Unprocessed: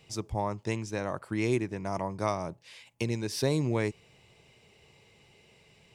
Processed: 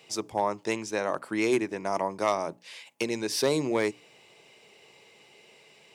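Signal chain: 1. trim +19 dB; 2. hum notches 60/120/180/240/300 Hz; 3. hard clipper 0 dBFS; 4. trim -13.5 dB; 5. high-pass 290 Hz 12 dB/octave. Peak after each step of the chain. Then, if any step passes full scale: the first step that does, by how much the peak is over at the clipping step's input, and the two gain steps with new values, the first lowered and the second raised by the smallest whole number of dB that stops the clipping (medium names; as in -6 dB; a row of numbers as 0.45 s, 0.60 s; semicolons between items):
+5.0 dBFS, +5.0 dBFS, 0.0 dBFS, -13.5 dBFS, -11.0 dBFS; step 1, 5.0 dB; step 1 +14 dB, step 4 -8.5 dB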